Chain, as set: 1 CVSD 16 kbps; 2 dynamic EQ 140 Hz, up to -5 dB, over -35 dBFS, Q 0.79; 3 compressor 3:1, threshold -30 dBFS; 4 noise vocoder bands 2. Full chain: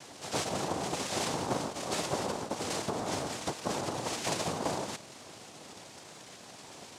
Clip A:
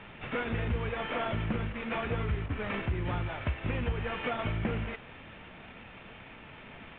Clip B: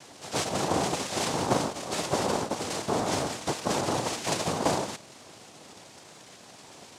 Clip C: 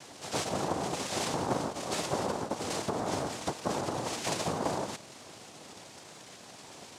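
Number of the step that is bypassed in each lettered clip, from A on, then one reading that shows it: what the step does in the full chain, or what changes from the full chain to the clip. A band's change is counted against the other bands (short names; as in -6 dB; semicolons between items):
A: 4, 125 Hz band +10.0 dB; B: 3, momentary loudness spread change +5 LU; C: 2, 4 kHz band -2.0 dB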